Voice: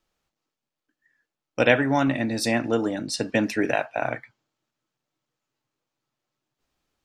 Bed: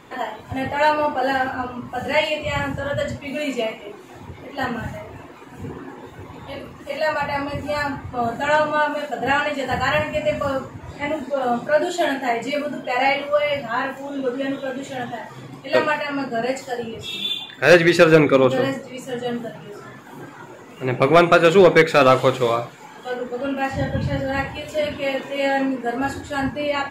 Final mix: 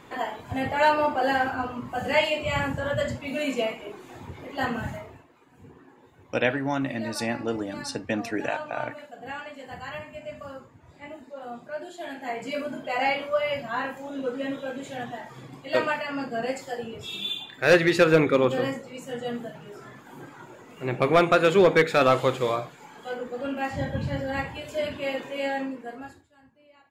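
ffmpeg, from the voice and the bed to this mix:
ffmpeg -i stem1.wav -i stem2.wav -filter_complex "[0:a]adelay=4750,volume=-5.5dB[link_01];[1:a]volume=8dB,afade=type=out:start_time=4.93:duration=0.31:silence=0.199526,afade=type=in:start_time=12.03:duration=0.62:silence=0.281838,afade=type=out:start_time=25.27:duration=1.01:silence=0.0375837[link_02];[link_01][link_02]amix=inputs=2:normalize=0" out.wav

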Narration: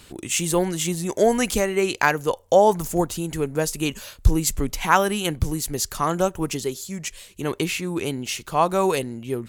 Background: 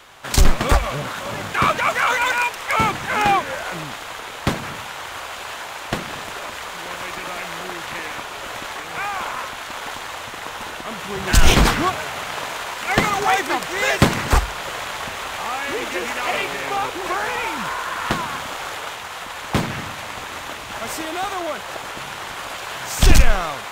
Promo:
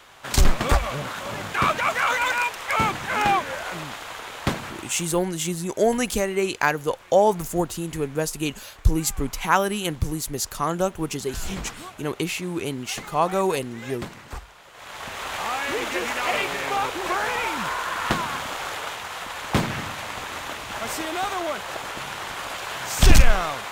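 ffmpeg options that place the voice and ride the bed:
ffmpeg -i stem1.wav -i stem2.wav -filter_complex "[0:a]adelay=4600,volume=-2dB[link_01];[1:a]volume=15dB,afade=type=out:start_time=4.51:duration=0.71:silence=0.149624,afade=type=in:start_time=14.73:duration=0.62:silence=0.11885[link_02];[link_01][link_02]amix=inputs=2:normalize=0" out.wav

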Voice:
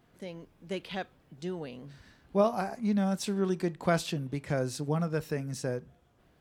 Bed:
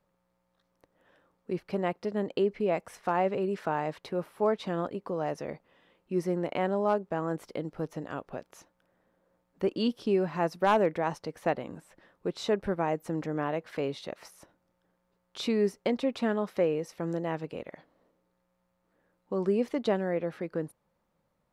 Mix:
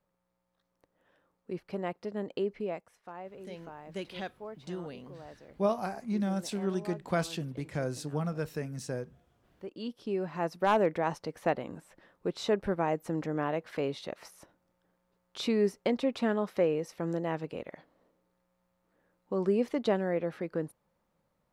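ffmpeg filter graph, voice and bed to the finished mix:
ffmpeg -i stem1.wav -i stem2.wav -filter_complex "[0:a]adelay=3250,volume=-3dB[link_01];[1:a]volume=11.5dB,afade=type=out:start_time=2.59:duration=0.31:silence=0.251189,afade=type=in:start_time=9.57:duration=1.36:silence=0.149624[link_02];[link_01][link_02]amix=inputs=2:normalize=0" out.wav

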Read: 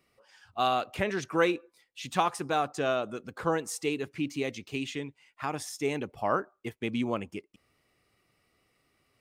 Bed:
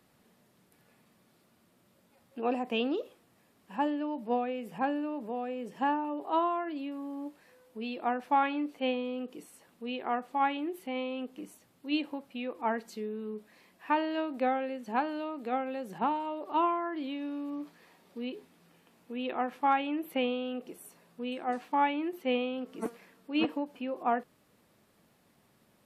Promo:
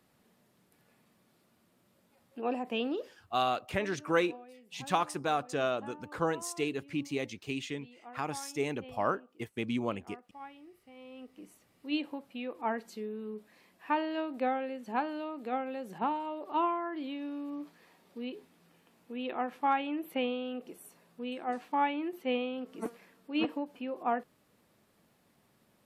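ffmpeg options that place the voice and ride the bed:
ffmpeg -i stem1.wav -i stem2.wav -filter_complex "[0:a]adelay=2750,volume=-2.5dB[link_01];[1:a]volume=14.5dB,afade=type=out:start_time=3.07:duration=0.34:silence=0.149624,afade=type=in:start_time=10.96:duration=0.93:silence=0.141254[link_02];[link_01][link_02]amix=inputs=2:normalize=0" out.wav

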